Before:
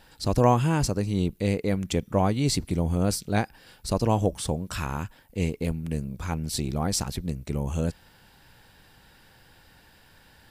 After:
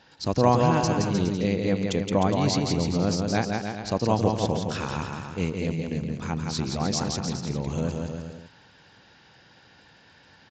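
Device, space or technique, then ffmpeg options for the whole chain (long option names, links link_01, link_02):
Bluetooth headset: -af "highpass=110,aecho=1:1:170|306|414.8|501.8|571.5:0.631|0.398|0.251|0.158|0.1,aresample=16000,aresample=44100" -ar 16000 -c:a sbc -b:a 64k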